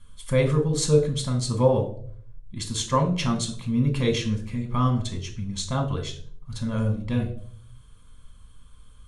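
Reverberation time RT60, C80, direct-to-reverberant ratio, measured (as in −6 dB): 0.55 s, 15.0 dB, 3.0 dB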